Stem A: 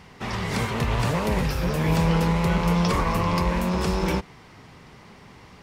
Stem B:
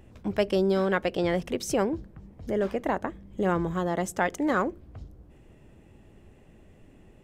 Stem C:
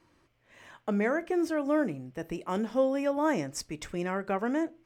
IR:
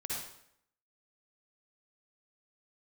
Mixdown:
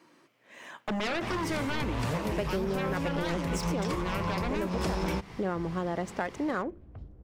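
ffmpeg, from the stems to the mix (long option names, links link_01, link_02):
-filter_complex "[0:a]asoftclip=type=tanh:threshold=-12dB,adelay=1000,volume=1.5dB[link_01];[1:a]adynamicsmooth=sensitivity=6.5:basefreq=3000,adelay=2000,volume=-2dB[link_02];[2:a]highpass=frequency=170:width=0.5412,highpass=frequency=170:width=1.3066,aeval=exprs='0.188*sin(PI/2*5.01*val(0)/0.188)':channel_layout=same,volume=-12dB,asplit=2[link_03][link_04];[link_04]apad=whole_len=291993[link_05];[link_01][link_05]sidechaincompress=threshold=-39dB:ratio=4:attack=48:release=302[link_06];[link_06][link_02][link_03]amix=inputs=3:normalize=0,acompressor=threshold=-27dB:ratio=6"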